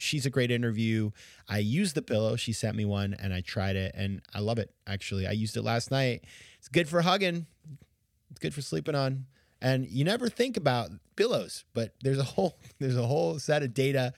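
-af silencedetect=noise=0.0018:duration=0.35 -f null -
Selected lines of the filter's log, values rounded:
silence_start: 7.84
silence_end: 8.30 | silence_duration: 0.46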